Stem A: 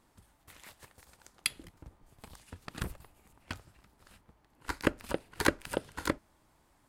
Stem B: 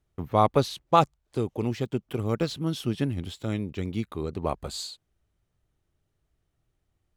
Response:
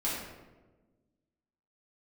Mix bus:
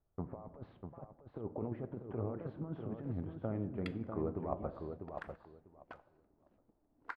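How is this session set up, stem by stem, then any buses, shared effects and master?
−4.0 dB, 2.40 s, send −23.5 dB, no echo send, high-shelf EQ 8,600 Hz −12 dB; envelope filter 240–1,600 Hz, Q 2.3, up, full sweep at −37 dBFS
−8.0 dB, 0.00 s, send −17 dB, echo send −6 dB, low-pass filter 1,500 Hz 24 dB per octave; compressor whose output falls as the input rises −29 dBFS, ratio −0.5; flanger 1.8 Hz, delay 1.9 ms, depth 4.5 ms, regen +85%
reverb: on, RT60 1.3 s, pre-delay 4 ms
echo: repeating echo 646 ms, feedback 18%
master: parametric band 650 Hz +7.5 dB 0.94 octaves

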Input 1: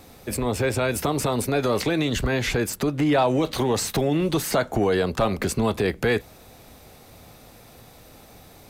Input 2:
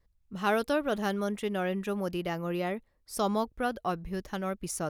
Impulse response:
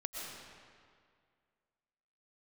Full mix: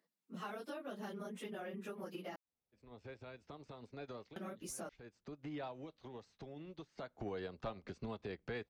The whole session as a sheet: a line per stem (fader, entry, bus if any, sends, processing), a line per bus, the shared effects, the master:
0:03.79 −20.5 dB → 0:04.28 −11.5 dB → 0:05.31 −11.5 dB → 0:05.93 −21.5 dB → 0:06.94 −21.5 dB → 0:07.27 −8.5 dB, 2.45 s, no send, inverse Chebyshev low-pass filter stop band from 12,000 Hz, stop band 50 dB; expander for the loud parts 2.5 to 1, over −30 dBFS; automatic ducking −17 dB, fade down 0.25 s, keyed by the second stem
−4.0 dB, 0.00 s, muted 0:02.36–0:04.36, no send, random phases in long frames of 50 ms; Butterworth high-pass 180 Hz 48 dB per octave; downward compressor, threshold −32 dBFS, peak gain reduction 9.5 dB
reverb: not used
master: downward compressor 2 to 1, threshold −47 dBFS, peak gain reduction 11 dB

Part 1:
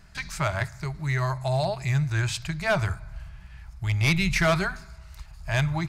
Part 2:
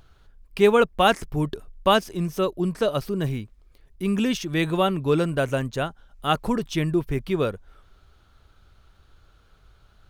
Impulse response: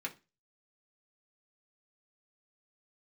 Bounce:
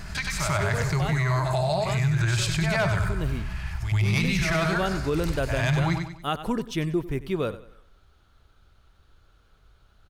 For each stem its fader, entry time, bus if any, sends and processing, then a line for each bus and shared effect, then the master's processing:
+1.5 dB, 0.00 s, no send, echo send −4 dB, shaped tremolo saw up 0.66 Hz, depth 50%; envelope flattener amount 50%; automatic ducking −12 dB, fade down 0.40 s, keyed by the second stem
0:02.86 −20 dB → 0:03.31 −8 dB, 0.00 s, no send, echo send −16 dB, no processing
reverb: not used
echo: repeating echo 95 ms, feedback 37%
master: automatic gain control gain up to 5 dB; brickwall limiter −16 dBFS, peak gain reduction 9 dB

